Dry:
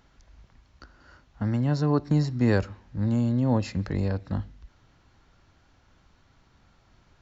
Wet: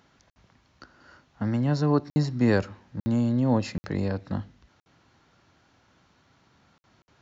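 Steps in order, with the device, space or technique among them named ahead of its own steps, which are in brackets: call with lost packets (high-pass 120 Hz 12 dB/octave; resampled via 16 kHz; lost packets of 60 ms); trim +1.5 dB

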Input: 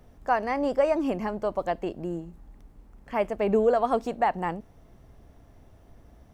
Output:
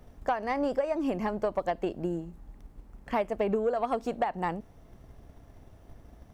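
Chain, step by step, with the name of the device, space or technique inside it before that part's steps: drum-bus smash (transient shaper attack +6 dB, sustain 0 dB; compression 6:1, threshold -23 dBFS, peak gain reduction 11 dB; saturation -17.5 dBFS, distortion -20 dB)

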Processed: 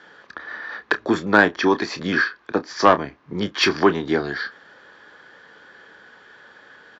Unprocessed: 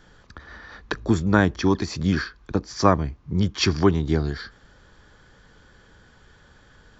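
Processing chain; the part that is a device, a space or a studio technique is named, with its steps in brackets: intercom (band-pass 360–3900 Hz; peaking EQ 1.7 kHz +5 dB 0.35 oct; saturation -9.5 dBFS, distortion -16 dB; doubling 29 ms -12 dB); trim +7 dB

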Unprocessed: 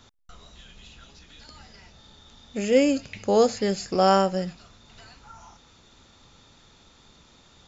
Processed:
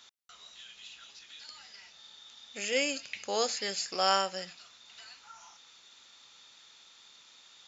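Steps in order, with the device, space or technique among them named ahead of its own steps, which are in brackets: filter by subtraction (in parallel: low-pass 3 kHz 12 dB/octave + polarity flip)

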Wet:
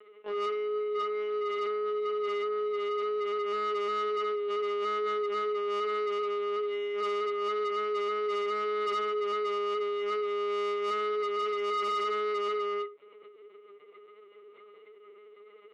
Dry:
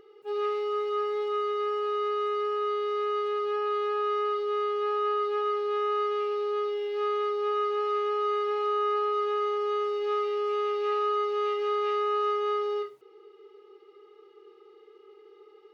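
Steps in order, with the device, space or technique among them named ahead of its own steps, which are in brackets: 1.00–1.59 s: elliptic low-pass 4.2 kHz; talking toy (LPC vocoder at 8 kHz pitch kept; high-pass 480 Hz 12 dB/octave; peaking EQ 2.2 kHz +10 dB 0.33 oct; saturation -31 dBFS, distortion -14 dB); trim +4 dB

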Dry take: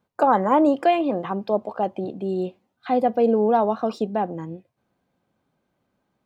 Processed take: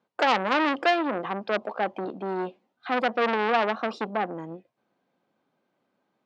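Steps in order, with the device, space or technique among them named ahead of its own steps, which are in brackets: public-address speaker with an overloaded transformer (transformer saturation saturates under 2.5 kHz; band-pass 230–5200 Hz)

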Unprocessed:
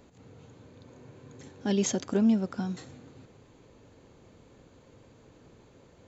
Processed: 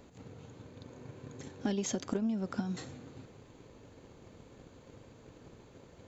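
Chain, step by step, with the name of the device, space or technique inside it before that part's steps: drum-bus smash (transient shaper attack +8 dB, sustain +2 dB; compression 16:1, threshold -28 dBFS, peak gain reduction 13.5 dB; saturation -21.5 dBFS, distortion -21 dB)

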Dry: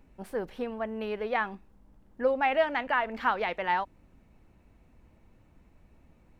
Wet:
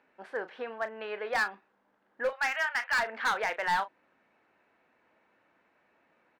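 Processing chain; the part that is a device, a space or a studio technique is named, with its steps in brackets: 2.29–2.98 s: high-pass 960 Hz 24 dB/octave; megaphone (band-pass 500–3800 Hz; peaking EQ 1.6 kHz +8 dB 0.56 oct; hard clipper -23.5 dBFS, distortion -8 dB; doubling 35 ms -12 dB)

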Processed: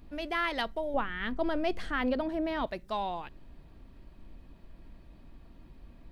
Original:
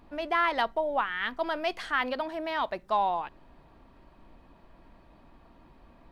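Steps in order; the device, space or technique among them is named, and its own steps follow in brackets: smiley-face EQ (bass shelf 140 Hz +7.5 dB; peaking EQ 940 Hz -9 dB 1.5 oct; treble shelf 6.4 kHz +4 dB); 0.94–2.67 s: tilt shelf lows +7.5 dB, about 1.4 kHz

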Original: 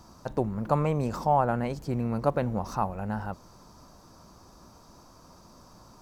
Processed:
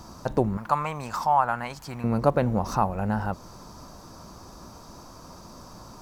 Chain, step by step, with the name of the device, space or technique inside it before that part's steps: parallel compression (in parallel at -2.5 dB: compression, threshold -35 dBFS, peak gain reduction 16 dB); 0.57–2.04 s: on the sum: resonant low shelf 670 Hz -12 dB, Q 1.5; trim +3 dB

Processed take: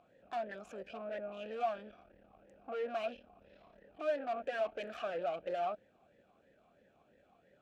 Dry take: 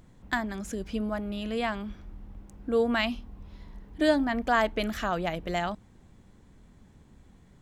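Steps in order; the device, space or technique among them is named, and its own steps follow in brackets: talk box (valve stage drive 36 dB, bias 0.55; talking filter a-e 3 Hz); trim +10.5 dB

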